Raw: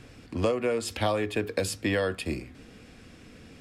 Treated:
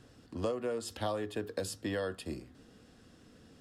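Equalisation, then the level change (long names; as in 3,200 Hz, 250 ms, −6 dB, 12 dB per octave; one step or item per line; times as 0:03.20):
low-shelf EQ 61 Hz −7 dB
parametric band 2,300 Hz −13 dB 0.34 octaves
−7.5 dB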